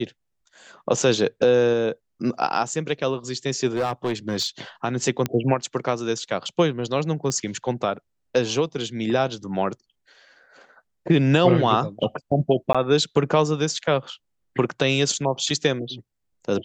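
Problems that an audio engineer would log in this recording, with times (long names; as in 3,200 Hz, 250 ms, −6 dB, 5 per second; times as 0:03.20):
0:03.75–0:04.47: clipping −19 dBFS
0:05.26: click −9 dBFS
0:07.30: click −14 dBFS
0:12.73–0:12.75: drop-out 16 ms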